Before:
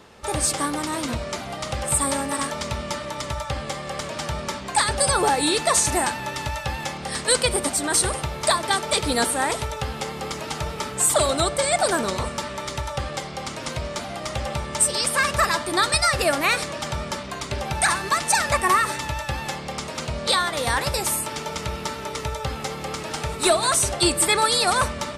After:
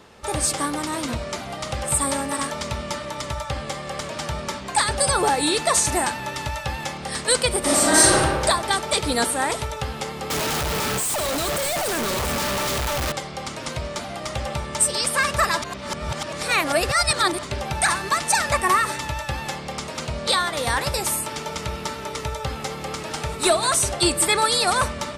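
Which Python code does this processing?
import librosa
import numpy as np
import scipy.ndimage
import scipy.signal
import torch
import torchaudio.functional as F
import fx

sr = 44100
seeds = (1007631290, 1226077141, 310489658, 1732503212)

y = fx.reverb_throw(x, sr, start_s=7.59, length_s=0.63, rt60_s=1.5, drr_db=-7.5)
y = fx.clip_1bit(y, sr, at=(10.3, 13.12))
y = fx.edit(y, sr, fx.reverse_span(start_s=15.62, length_s=1.81), tone=tone)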